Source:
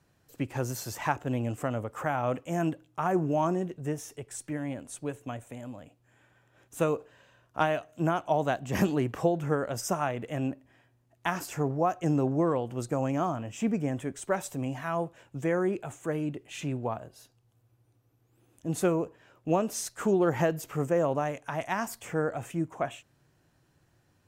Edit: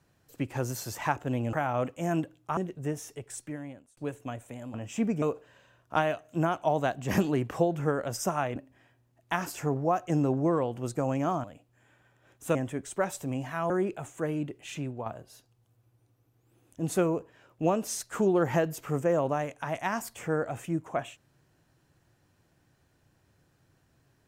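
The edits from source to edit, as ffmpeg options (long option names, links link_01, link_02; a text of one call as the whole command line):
ffmpeg -i in.wav -filter_complex "[0:a]asplit=11[link_01][link_02][link_03][link_04][link_05][link_06][link_07][link_08][link_09][link_10][link_11];[link_01]atrim=end=1.532[link_12];[link_02]atrim=start=2.018:end=3.062[link_13];[link_03]atrim=start=3.578:end=4.98,asetpts=PTS-STARTPTS,afade=type=out:start_time=0.722:duration=0.68[link_14];[link_04]atrim=start=4.98:end=5.752,asetpts=PTS-STARTPTS,afade=type=in:duration=0.004:curve=hsin[link_15];[link_05]atrim=start=13.378:end=13.862[link_16];[link_06]atrim=start=6.858:end=10.202[link_17];[link_07]atrim=start=10.498:end=13.382[link_18];[link_08]atrim=start=5.748:end=6.862[link_19];[link_09]atrim=start=13.858:end=15.012[link_20];[link_10]atrim=start=15.558:end=16.92,asetpts=PTS-STARTPTS,afade=type=out:start_time=0.942:duration=0.42:silence=0.473151[link_21];[link_11]atrim=start=16.92,asetpts=PTS-STARTPTS,afade=type=in:duration=0.004:curve=hsin:silence=0.473151[link_22];[link_12][link_13]acrossfade=duration=0.004:curve1=hsin:curve2=hsin[link_23];[link_14][link_15]concat=n=2:v=0:a=1[link_24];[link_23][link_24]acrossfade=duration=0.004:curve1=hsin:curve2=hsin[link_25];[link_25][link_16]acrossfade=duration=0.004:curve1=hsin:curve2=hsin[link_26];[link_26][link_17]acrossfade=duration=0.004:curve1=hsin:curve2=hsin[link_27];[link_27][link_18]acrossfade=duration=0.004:curve1=hsin:curve2=hsin[link_28];[link_28][link_19]acrossfade=duration=0.004:curve1=hsin:curve2=hsin[link_29];[link_29][link_20]acrossfade=duration=0.004:curve1=hsin:curve2=hsin[link_30];[link_21][link_22]concat=n=2:v=0:a=1[link_31];[link_30][link_31]acrossfade=duration=0.004:curve1=hsin:curve2=hsin" out.wav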